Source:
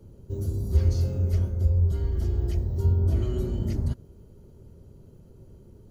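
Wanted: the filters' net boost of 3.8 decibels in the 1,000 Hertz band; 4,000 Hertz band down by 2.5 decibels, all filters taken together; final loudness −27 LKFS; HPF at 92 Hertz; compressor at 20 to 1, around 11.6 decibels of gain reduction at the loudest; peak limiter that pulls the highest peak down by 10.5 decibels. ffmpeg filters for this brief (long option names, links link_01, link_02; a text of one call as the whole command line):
ffmpeg -i in.wav -af "highpass=92,equalizer=frequency=1000:width_type=o:gain=5,equalizer=frequency=4000:width_type=o:gain=-3.5,acompressor=threshold=-32dB:ratio=20,volume=17.5dB,alimiter=limit=-18dB:level=0:latency=1" out.wav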